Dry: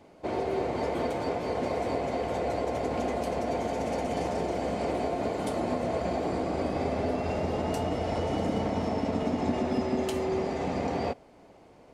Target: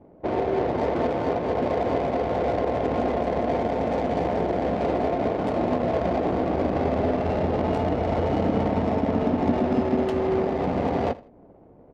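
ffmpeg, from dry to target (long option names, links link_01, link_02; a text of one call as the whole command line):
ffmpeg -i in.wav -af "adynamicsmooth=sensitivity=3.5:basefreq=590,aecho=1:1:81|162:0.106|0.0265,volume=6dB" out.wav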